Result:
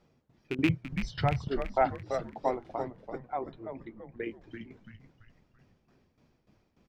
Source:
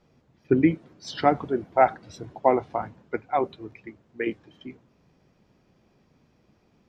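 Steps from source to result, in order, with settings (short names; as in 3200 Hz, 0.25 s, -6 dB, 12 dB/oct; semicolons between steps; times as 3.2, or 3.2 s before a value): rattling part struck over -23 dBFS, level -10 dBFS; 0.69–1.48 resonant low shelf 180 Hz +13 dB, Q 3; 2.82–4.23 LPF 1400 Hz 6 dB/oct; in parallel at -2.5 dB: compressor, threshold -31 dBFS, peak gain reduction 17.5 dB; on the sum: tremolo saw down 3.4 Hz, depth 85%; on a send: frequency-shifting echo 0.335 s, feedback 44%, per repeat -120 Hz, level -7 dB; on the sum: gain -7 dB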